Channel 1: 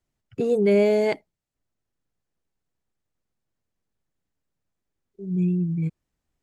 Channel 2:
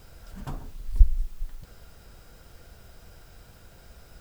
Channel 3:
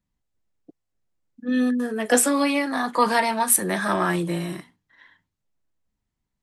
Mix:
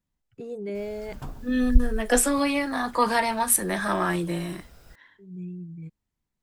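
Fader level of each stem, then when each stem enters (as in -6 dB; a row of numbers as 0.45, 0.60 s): -14.0, -1.5, -2.5 dB; 0.00, 0.75, 0.00 s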